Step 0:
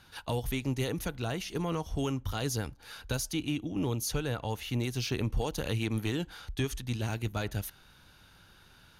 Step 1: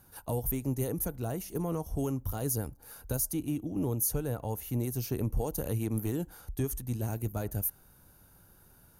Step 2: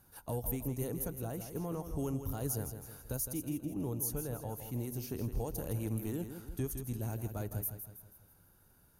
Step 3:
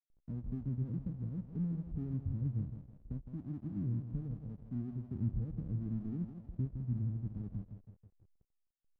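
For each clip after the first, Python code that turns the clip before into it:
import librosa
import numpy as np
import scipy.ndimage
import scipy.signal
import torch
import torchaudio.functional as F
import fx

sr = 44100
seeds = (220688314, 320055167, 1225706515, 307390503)

y1 = fx.curve_eq(x, sr, hz=(640.0, 3500.0, 13000.0), db=(0, -17, 13))
y2 = fx.rider(y1, sr, range_db=10, speed_s=2.0)
y2 = fx.echo_feedback(y2, sr, ms=162, feedback_pct=45, wet_db=-9.0)
y2 = y2 * 10.0 ** (-6.0 / 20.0)
y3 = fx.spec_ripple(y2, sr, per_octave=1.5, drift_hz=-0.68, depth_db=10)
y3 = fx.ladder_lowpass(y3, sr, hz=250.0, resonance_pct=40)
y3 = fx.backlash(y3, sr, play_db=-58.5)
y3 = y3 * 10.0 ** (6.5 / 20.0)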